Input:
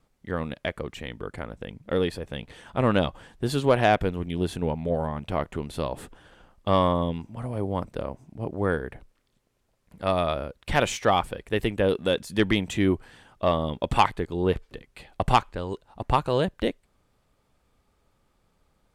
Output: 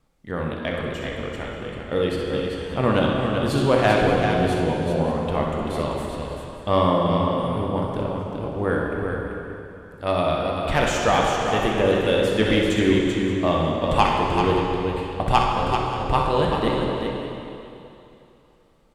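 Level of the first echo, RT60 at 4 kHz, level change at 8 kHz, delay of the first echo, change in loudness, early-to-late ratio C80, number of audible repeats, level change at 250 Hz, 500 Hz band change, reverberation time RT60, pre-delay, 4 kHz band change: −7.5 dB, 2.7 s, +4.0 dB, 63 ms, +4.5 dB, −0.5 dB, 3, +5.5 dB, +5.0 dB, 2.9 s, 5 ms, +5.0 dB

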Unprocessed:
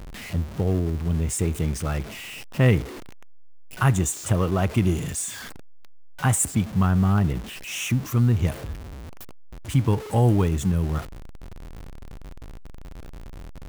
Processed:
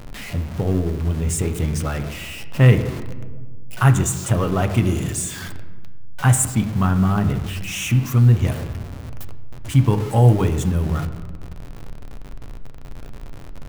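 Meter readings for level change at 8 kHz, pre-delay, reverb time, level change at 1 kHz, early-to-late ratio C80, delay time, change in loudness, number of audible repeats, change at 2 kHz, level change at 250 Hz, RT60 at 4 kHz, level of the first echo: +3.0 dB, 7 ms, 1.5 s, +4.0 dB, 13.0 dB, no echo audible, +4.0 dB, no echo audible, +3.5 dB, +3.0 dB, 0.85 s, no echo audible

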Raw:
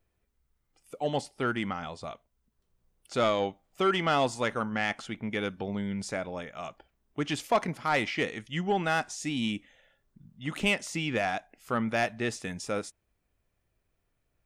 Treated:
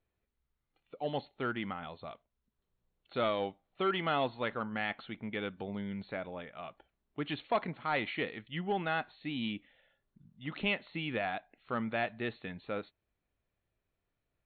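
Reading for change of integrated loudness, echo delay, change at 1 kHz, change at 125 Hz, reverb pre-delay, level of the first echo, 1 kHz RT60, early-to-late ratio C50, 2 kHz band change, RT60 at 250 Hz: −5.5 dB, no echo audible, −5.5 dB, −6.5 dB, no reverb audible, no echo audible, no reverb audible, no reverb audible, −5.5 dB, no reverb audible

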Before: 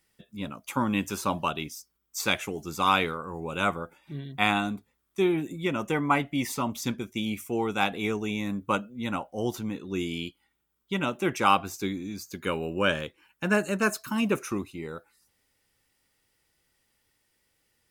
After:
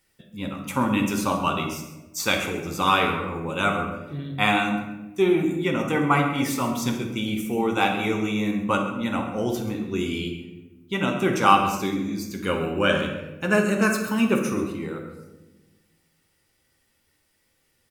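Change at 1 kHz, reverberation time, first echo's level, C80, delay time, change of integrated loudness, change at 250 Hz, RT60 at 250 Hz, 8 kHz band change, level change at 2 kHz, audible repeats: +4.5 dB, 1.1 s, −14.0 dB, 7.0 dB, 133 ms, +4.5 dB, +5.5 dB, 1.7 s, +3.5 dB, +4.0 dB, 1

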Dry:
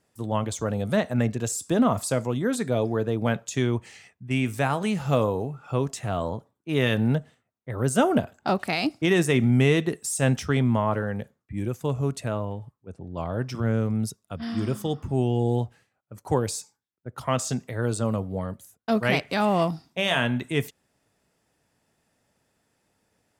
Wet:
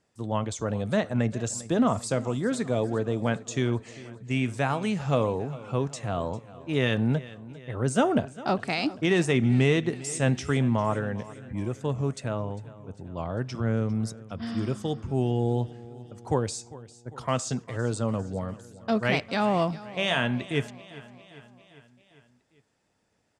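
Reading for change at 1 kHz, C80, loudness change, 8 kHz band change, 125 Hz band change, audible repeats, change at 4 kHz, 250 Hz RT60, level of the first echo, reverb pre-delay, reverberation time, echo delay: −2.0 dB, no reverb audible, −2.0 dB, −3.5 dB, −2.0 dB, 4, −2.0 dB, no reverb audible, −18.5 dB, no reverb audible, no reverb audible, 400 ms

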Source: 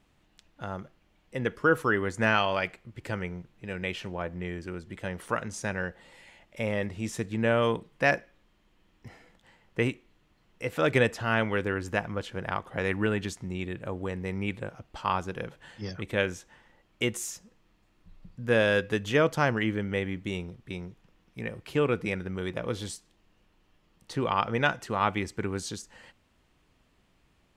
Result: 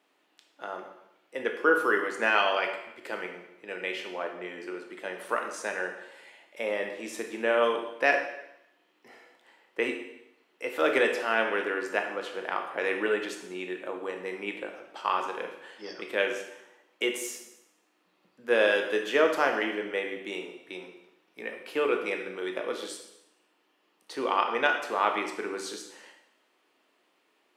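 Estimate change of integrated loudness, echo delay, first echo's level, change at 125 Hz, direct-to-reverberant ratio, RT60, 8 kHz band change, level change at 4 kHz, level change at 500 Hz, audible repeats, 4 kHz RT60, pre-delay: +0.5 dB, no echo audible, no echo audible, below −20 dB, 3.0 dB, 0.85 s, −1.5 dB, +1.0 dB, +1.0 dB, no echo audible, 0.80 s, 8 ms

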